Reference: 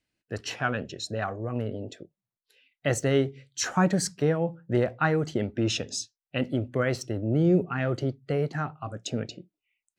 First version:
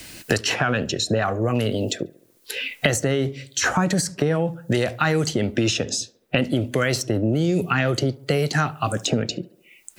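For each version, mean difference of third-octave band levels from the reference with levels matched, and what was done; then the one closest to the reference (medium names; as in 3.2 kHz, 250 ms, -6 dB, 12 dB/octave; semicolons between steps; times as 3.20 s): 6.5 dB: treble shelf 4.8 kHz +11 dB; peak limiter -19.5 dBFS, peak gain reduction 9.5 dB; tape echo 71 ms, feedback 49%, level -22 dB, low-pass 2.2 kHz; three bands compressed up and down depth 100%; trim +8 dB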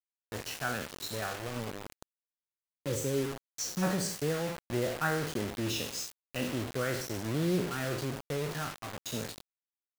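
14.0 dB: spectral sustain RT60 0.65 s; low-pass 10 kHz 24 dB/octave; time-frequency box 1.79–3.82 s, 560–4200 Hz -23 dB; bit crusher 5-bit; trim -8.5 dB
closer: first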